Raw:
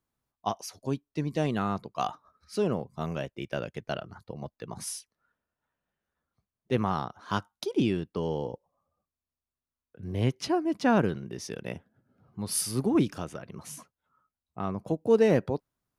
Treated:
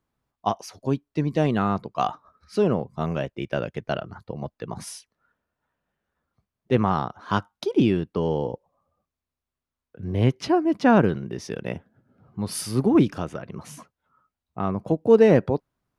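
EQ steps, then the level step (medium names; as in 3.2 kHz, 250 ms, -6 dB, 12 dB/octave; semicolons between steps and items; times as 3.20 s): treble shelf 4.9 kHz -11.5 dB; +6.5 dB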